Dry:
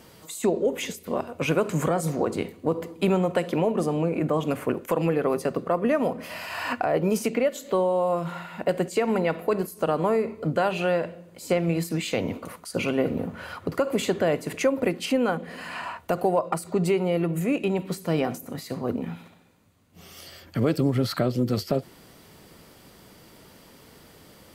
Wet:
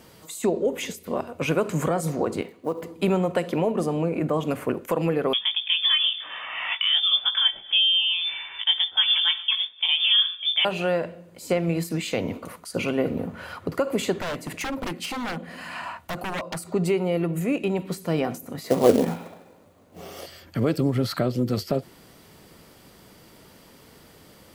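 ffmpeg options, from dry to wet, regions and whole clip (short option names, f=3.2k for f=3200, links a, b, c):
-filter_complex "[0:a]asettb=1/sr,asplit=3[a][b][c];[a]atrim=end=2.414[d];[b]atrim=start=2.41:end=2.83,asetpts=PTS-STARTPTS,afade=t=in:d=0.004:c=qsin,afade=t=out:st=0.416:d=0.004:c=qsin,highpass=f=390:p=1,highshelf=f=5.3k:g=-9.5,acrusher=bits=8:mode=log:mix=0:aa=0.000001[e];[c]atrim=start=2.826[f];[d][e]acrossfade=d=0.004:c1=hsin:c2=qsin[g];[g][f]acrossfade=d=0.004:c1=qsin:c2=hsin,asettb=1/sr,asplit=3[h][i][j];[h]atrim=end=5.334[k];[i]atrim=start=5.33:end=10.65,asetpts=PTS-STARTPTS,afade=t=in:d=0.004:c=qsin,afade=t=out:st=5.316:d=0.004:c=qsin,asplit=2[l][m];[m]adelay=18,volume=-4dB[n];[l][n]amix=inputs=2:normalize=0,atrim=end_sample=234612,lowpass=f=3.1k:t=q:w=0.5098,lowpass=f=3.1k:t=q:w=0.6013,lowpass=f=3.1k:t=q:w=0.9,lowpass=f=3.1k:t=q:w=2.563,afreqshift=-3700[o];[j]atrim=start=10.646[p];[k][o]acrossfade=d=0.004:c1=hsin:c2=qsin[q];[q][p]acrossfade=d=0.004:c1=qsin:c2=hsin,asettb=1/sr,asplit=3[r][s][t];[r]atrim=end=14.184[u];[s]atrim=start=14.18:end=16.68,asetpts=PTS-STARTPTS,afade=t=in:d=0.004:c=qsin,afade=t=out:st=2.496:d=0.004:c=qsin,equalizer=f=440:t=o:w=0.32:g=-8.5,aeval=exprs='0.0631*(abs(mod(val(0)/0.0631+3,4)-2)-1)':c=same[v];[t]atrim=start=16.676[w];[u][v]acrossfade=d=0.004:c1=hsin:c2=qsin[x];[x][w]acrossfade=d=0.004:c1=qsin:c2=hsin,asettb=1/sr,asplit=3[y][z][aa];[y]atrim=end=18.644[ab];[z]atrim=start=18.64:end=20.26,asetpts=PTS-STARTPTS,afade=t=in:d=0.004:c=qsin,afade=t=out:st=1.616:d=0.004:c=qsin,equalizer=f=550:w=0.59:g=15,acrusher=bits=4:mode=log:mix=0:aa=0.000001,asplit=2[ac][ad];[ad]adelay=22,volume=-12dB[ae];[ac][ae]amix=inputs=2:normalize=0,atrim=end_sample=71442[af];[aa]atrim=start=20.256[ag];[ab][af]acrossfade=d=0.004:c1=hsin:c2=qsin[ah];[ah][ag]acrossfade=d=0.004:c1=qsin:c2=hsin"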